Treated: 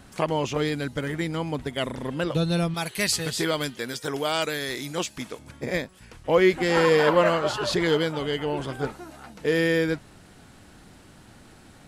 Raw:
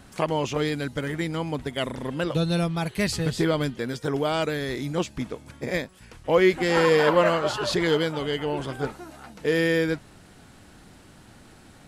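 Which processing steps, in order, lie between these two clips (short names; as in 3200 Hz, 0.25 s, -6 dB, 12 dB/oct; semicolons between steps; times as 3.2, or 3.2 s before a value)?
2.74–5.39 tilt +2.5 dB/oct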